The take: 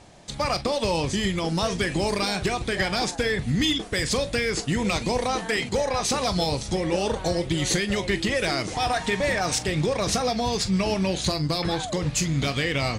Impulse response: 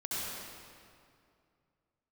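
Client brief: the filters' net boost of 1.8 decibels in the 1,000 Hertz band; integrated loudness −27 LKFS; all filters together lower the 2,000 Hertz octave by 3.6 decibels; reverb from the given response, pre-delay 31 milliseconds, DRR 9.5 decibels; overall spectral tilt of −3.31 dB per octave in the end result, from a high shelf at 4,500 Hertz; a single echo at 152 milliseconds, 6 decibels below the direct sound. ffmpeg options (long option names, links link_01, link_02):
-filter_complex "[0:a]equalizer=frequency=1000:width_type=o:gain=3.5,equalizer=frequency=2000:width_type=o:gain=-7,highshelf=frequency=4500:gain=9,aecho=1:1:152:0.501,asplit=2[link_01][link_02];[1:a]atrim=start_sample=2205,adelay=31[link_03];[link_02][link_03]afir=irnorm=-1:irlink=0,volume=-14dB[link_04];[link_01][link_04]amix=inputs=2:normalize=0,volume=-5dB"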